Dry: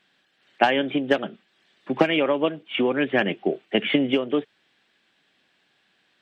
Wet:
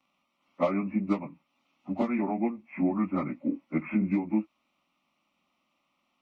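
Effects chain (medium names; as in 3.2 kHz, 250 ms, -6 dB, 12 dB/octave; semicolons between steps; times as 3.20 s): frequency-domain pitch shifter -5.5 st; static phaser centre 440 Hz, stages 6; trim -1.5 dB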